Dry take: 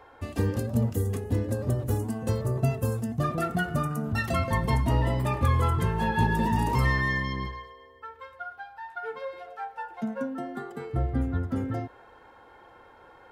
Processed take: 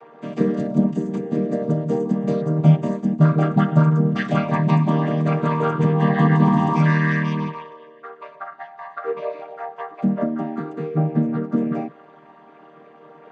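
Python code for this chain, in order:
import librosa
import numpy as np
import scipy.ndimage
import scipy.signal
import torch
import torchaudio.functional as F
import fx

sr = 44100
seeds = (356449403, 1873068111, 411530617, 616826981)

y = fx.chord_vocoder(x, sr, chord='major triad', root=51)
y = fx.notch(y, sr, hz=5400.0, q=15.0)
y = y + 0.37 * np.pad(y, (int(6.8 * sr / 1000.0), 0))[:len(y)]
y = y * librosa.db_to_amplitude(9.0)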